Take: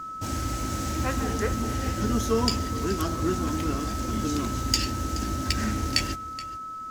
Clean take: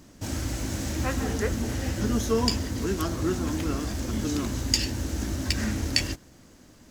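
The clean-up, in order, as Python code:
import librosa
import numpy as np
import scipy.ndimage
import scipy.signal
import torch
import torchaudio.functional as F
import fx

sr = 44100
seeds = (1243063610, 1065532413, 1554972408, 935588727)

y = fx.fix_declip(x, sr, threshold_db=-9.5)
y = fx.notch(y, sr, hz=1300.0, q=30.0)
y = fx.fix_echo_inverse(y, sr, delay_ms=425, level_db=-16.5)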